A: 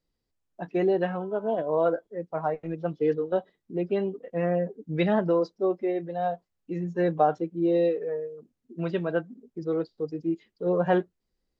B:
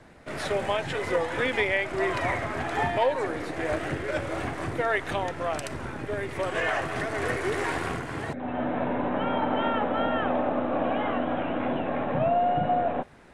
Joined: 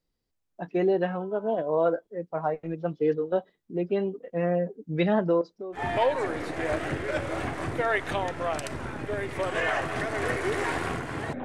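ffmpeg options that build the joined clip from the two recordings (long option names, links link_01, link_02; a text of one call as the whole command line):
ffmpeg -i cue0.wav -i cue1.wav -filter_complex "[0:a]asettb=1/sr,asplit=3[link_01][link_02][link_03];[link_01]atrim=end=5.414[link_04];[link_02]atrim=start=5.41:end=5.92,asetpts=PTS-STARTPTS,afade=type=in:duration=0.004:curve=qsin,afade=type=out:start_time=0.506:duration=0.004:curve=qsin,acompressor=threshold=-33dB:ratio=12:attack=3.2:release=140:knee=1:detection=peak[link_05];[link_03]atrim=start=5.916[link_06];[link_04][link_05]acrossfade=duration=0.004:curve1=hsin:curve2=qsin[link_07];[link_07][link_06]acrossfade=duration=0.004:curve1=qsin:curve2=hsin,apad=whole_dur=11.44,atrim=end=11.44,atrim=end=5.92,asetpts=PTS-STARTPTS[link_08];[1:a]atrim=start=2.72:end=8.44,asetpts=PTS-STARTPTS[link_09];[link_08][link_09]acrossfade=duration=0.2:curve1=tri:curve2=tri" out.wav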